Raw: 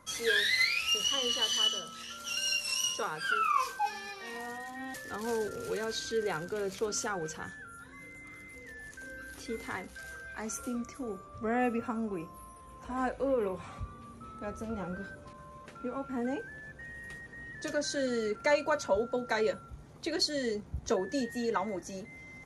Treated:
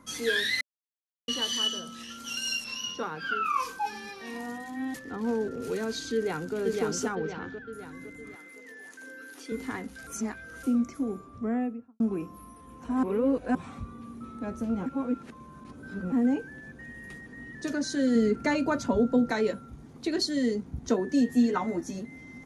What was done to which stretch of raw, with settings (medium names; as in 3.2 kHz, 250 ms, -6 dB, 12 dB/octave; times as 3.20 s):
0.61–1.28 s: mute
2.64–3.46 s: boxcar filter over 5 samples
4.99–5.62 s: low-pass 2 kHz 6 dB/octave
6.14–6.56 s: echo throw 510 ms, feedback 50%, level -2 dB
7.15–7.73 s: low-pass 4.5 kHz 24 dB/octave
8.35–9.52 s: high-pass 420 Hz
10.07–10.63 s: reverse
11.15–12.00 s: studio fade out
13.03–13.55 s: reverse
14.86–16.12 s: reverse
18.15–19.31 s: bass shelf 270 Hz +9.5 dB
21.28–21.99 s: doubling 12 ms -3.5 dB
whole clip: peaking EQ 250 Hz +11.5 dB 0.93 oct; band-stop 580 Hz, Q 13